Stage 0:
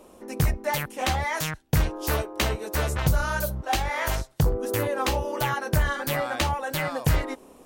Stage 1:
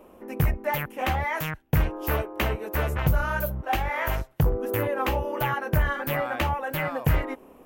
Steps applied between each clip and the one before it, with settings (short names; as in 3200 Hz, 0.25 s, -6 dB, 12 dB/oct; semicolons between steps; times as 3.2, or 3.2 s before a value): band shelf 6000 Hz -12.5 dB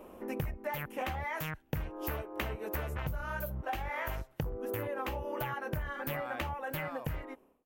ending faded out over 1.20 s; compressor 10:1, threshold -33 dBFS, peak gain reduction 16 dB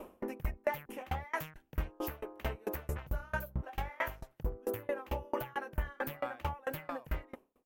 dB-ramp tremolo decaying 4.5 Hz, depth 30 dB; gain +7 dB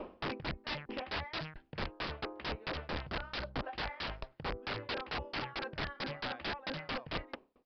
wrapped overs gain 34.5 dB; downsampling 11025 Hz; gain +4 dB